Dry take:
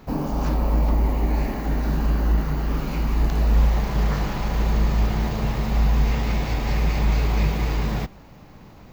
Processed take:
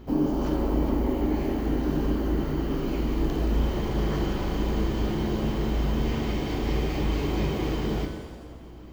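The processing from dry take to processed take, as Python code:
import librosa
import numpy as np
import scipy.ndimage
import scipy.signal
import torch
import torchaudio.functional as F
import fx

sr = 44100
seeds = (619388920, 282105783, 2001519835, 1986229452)

y = fx.small_body(x, sr, hz=(330.0, 3100.0), ring_ms=30, db=15)
y = fx.add_hum(y, sr, base_hz=60, snr_db=20)
y = fx.rev_shimmer(y, sr, seeds[0], rt60_s=1.3, semitones=7, shimmer_db=-8, drr_db=4.5)
y = y * librosa.db_to_amplitude(-7.5)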